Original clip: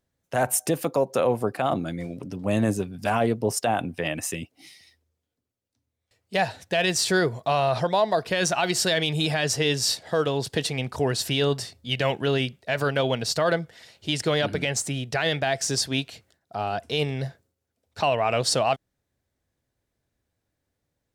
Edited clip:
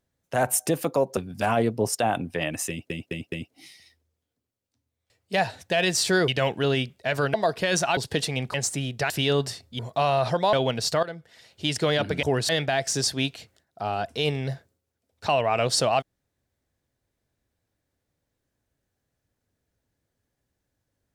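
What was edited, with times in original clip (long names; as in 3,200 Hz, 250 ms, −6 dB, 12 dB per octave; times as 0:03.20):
0:01.17–0:02.81: remove
0:04.33: stutter 0.21 s, 4 plays
0:07.29–0:08.03: swap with 0:11.91–0:12.97
0:08.66–0:10.39: remove
0:10.96–0:11.22: swap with 0:14.67–0:15.23
0:13.47–0:14.09: fade in, from −17 dB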